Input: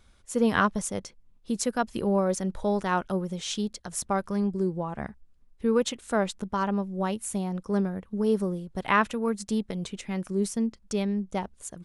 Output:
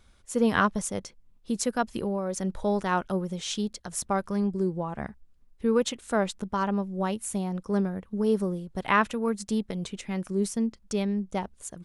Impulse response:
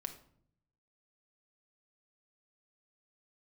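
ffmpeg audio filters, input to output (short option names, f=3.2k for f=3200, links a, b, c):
-filter_complex "[0:a]asettb=1/sr,asplit=3[a][b][c];[a]atrim=end=1.914[d];[b]atrim=start=1.91:end=2.36,asetpts=PTS-STARTPTS,afade=t=in:d=0.004:c=qsin,afade=t=out:st=0.446:d=0.004:c=qsin,acompressor=threshold=-26dB:ratio=6[e];[c]atrim=start=2.356[f];[d][e]acrossfade=d=0.004:c1=hsin:c2=qsin[g];[g][f]acrossfade=d=0.004:c1=qsin:c2=hsin"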